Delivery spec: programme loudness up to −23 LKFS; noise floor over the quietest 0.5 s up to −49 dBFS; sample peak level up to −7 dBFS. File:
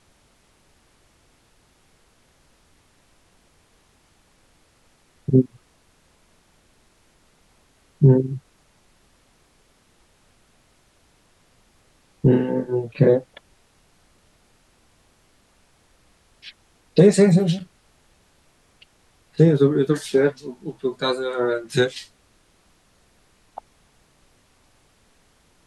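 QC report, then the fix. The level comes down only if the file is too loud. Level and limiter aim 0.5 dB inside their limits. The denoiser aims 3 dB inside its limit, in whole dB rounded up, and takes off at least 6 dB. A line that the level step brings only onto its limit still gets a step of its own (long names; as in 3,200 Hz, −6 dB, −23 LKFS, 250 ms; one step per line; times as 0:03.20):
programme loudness −20.0 LKFS: out of spec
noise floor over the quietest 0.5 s −60 dBFS: in spec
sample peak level −3.0 dBFS: out of spec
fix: level −3.5 dB
brickwall limiter −7.5 dBFS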